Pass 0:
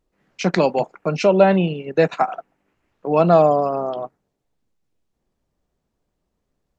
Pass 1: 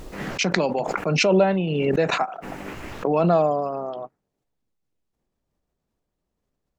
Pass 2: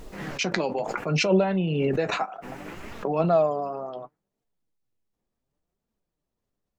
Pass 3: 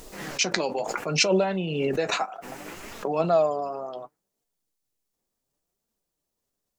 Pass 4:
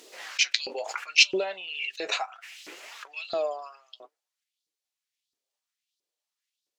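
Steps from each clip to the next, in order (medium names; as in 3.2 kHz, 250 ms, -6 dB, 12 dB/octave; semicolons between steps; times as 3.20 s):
swell ahead of each attack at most 22 dB/s; trim -6 dB
flange 0.68 Hz, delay 4.1 ms, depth 6.2 ms, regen +54%
tone controls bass -6 dB, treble +10 dB
frequency weighting D; LFO high-pass saw up 1.5 Hz 300–4500 Hz; trim -10.5 dB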